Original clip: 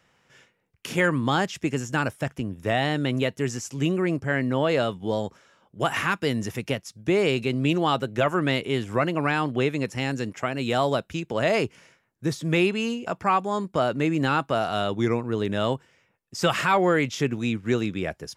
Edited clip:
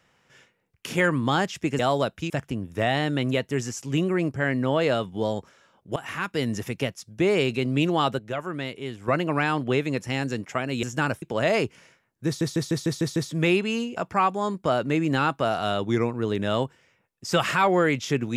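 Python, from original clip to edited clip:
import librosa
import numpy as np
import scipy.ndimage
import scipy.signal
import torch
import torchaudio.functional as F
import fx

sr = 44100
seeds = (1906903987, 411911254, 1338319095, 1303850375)

y = fx.edit(x, sr, fx.swap(start_s=1.79, length_s=0.39, other_s=10.71, other_length_s=0.51),
    fx.fade_in_from(start_s=5.84, length_s=0.53, floor_db=-15.0),
    fx.clip_gain(start_s=8.07, length_s=0.89, db=-8.0),
    fx.stutter(start_s=12.26, slice_s=0.15, count=7), tone=tone)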